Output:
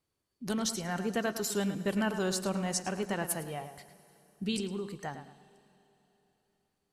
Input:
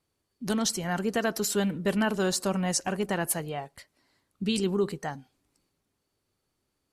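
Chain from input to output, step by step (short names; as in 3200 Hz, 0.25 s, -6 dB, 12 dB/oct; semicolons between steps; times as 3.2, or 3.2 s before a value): 4.6–5.03 compressor, threshold -29 dBFS, peak gain reduction 8 dB; darkening echo 0.107 s, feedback 33%, low-pass 4700 Hz, level -10 dB; Schroeder reverb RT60 3.6 s, combs from 33 ms, DRR 18 dB; gain -5 dB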